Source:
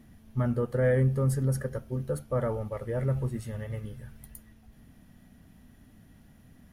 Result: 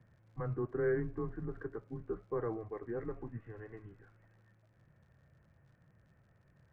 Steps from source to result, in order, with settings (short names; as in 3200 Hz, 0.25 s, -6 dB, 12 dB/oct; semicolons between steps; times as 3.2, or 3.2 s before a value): mistuned SSB -110 Hz 200–2300 Hz; crackle 86/s -54 dBFS; air absorption 74 m; gain -6 dB